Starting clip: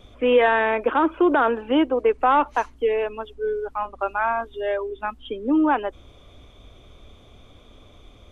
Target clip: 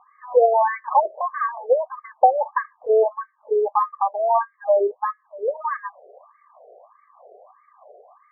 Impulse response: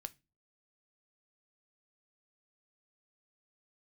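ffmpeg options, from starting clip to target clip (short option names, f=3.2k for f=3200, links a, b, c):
-filter_complex "[0:a]asuperstop=centerf=1400:order=8:qfactor=4.3,acompressor=threshold=-22dB:ratio=3,asplit=2[a][b];[b]aemphasis=mode=production:type=riaa[c];[1:a]atrim=start_sample=2205,lowpass=f=1.8k:w=0.5412,lowpass=f=1.8k:w=1.3066[d];[c][d]afir=irnorm=-1:irlink=0,volume=1dB[e];[a][e]amix=inputs=2:normalize=0,afftfilt=real='re*between(b*sr/1024,530*pow(1600/530,0.5+0.5*sin(2*PI*1.6*pts/sr))/1.41,530*pow(1600/530,0.5+0.5*sin(2*PI*1.6*pts/sr))*1.41)':imag='im*between(b*sr/1024,530*pow(1600/530,0.5+0.5*sin(2*PI*1.6*pts/sr))/1.41,530*pow(1600/530,0.5+0.5*sin(2*PI*1.6*pts/sr))*1.41)':win_size=1024:overlap=0.75,volume=7.5dB"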